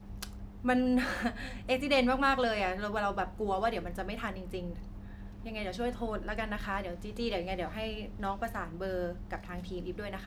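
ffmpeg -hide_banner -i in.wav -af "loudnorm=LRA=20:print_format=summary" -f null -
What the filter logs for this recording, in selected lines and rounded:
Input Integrated:    -34.4 LUFS
Input True Peak:     -14.5 dBTP
Input LRA:             7.1 LU
Input Threshold:     -44.6 LUFS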